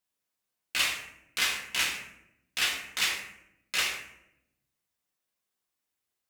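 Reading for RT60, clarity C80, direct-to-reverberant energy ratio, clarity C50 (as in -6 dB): 0.80 s, 8.0 dB, -3.5 dB, 5.0 dB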